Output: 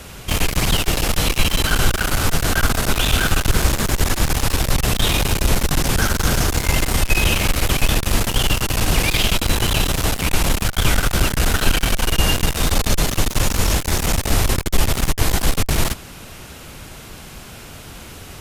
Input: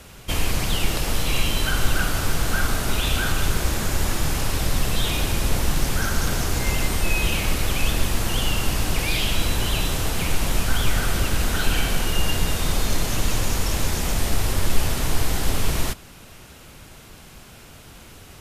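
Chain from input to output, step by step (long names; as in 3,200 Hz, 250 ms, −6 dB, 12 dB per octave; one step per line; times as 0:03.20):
asymmetric clip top −28 dBFS, bottom −8 dBFS
level +7.5 dB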